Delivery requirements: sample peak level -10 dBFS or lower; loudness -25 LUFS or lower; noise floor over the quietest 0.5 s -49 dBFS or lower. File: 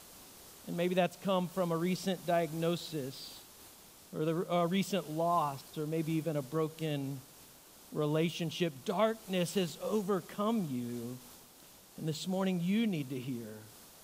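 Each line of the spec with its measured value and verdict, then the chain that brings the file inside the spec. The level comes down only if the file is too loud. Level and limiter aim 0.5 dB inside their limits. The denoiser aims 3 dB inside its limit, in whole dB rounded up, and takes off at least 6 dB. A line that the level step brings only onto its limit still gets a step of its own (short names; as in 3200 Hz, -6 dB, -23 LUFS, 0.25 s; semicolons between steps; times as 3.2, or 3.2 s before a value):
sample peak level -16.5 dBFS: OK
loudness -34.5 LUFS: OK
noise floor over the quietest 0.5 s -58 dBFS: OK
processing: none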